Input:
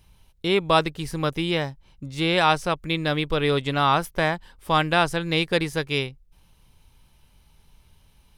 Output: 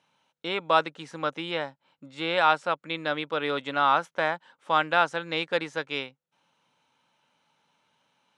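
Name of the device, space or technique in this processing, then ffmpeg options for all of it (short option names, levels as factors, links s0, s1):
television speaker: -filter_complex "[0:a]highpass=f=200:w=0.5412,highpass=f=200:w=1.3066,equalizer=f=200:t=q:w=4:g=-6,equalizer=f=380:t=q:w=4:g=-8,equalizer=f=550:t=q:w=4:g=4,equalizer=f=890:t=q:w=4:g=4,equalizer=f=1400:t=q:w=4:g=7,equalizer=f=4900:t=q:w=4:g=-8,lowpass=f=7000:w=0.5412,lowpass=f=7000:w=1.3066,asettb=1/sr,asplit=3[s0][s1][s2];[s0]atrim=end=1.504[s3];[s1]atrim=start=1.5:end=3,asetpts=PTS-STARTPTS,afade=t=in:d=0.004:c=qsin,afade=t=out:st=1.496:d=0.004:c=qsin,bandreject=f=6100:w=5.7[s4];[s2]atrim=start=2.996[s5];[s3][s4]acrossfade=d=0.004:c1=hsin:c2=qsin[s6];[s6][s5]acrossfade=d=0.004:c1=qsin:c2=hsin,volume=0.562"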